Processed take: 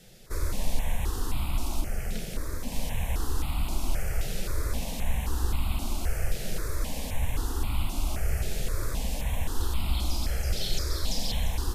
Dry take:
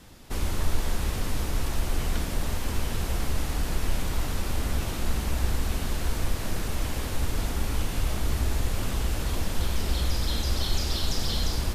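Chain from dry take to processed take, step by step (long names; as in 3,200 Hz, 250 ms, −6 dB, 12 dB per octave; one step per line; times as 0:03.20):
loose part that buzzes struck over −28 dBFS, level −33 dBFS
0:01.81–0:02.72: amplitude modulation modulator 240 Hz, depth 50%
step-sequenced phaser 3.8 Hz 280–1,700 Hz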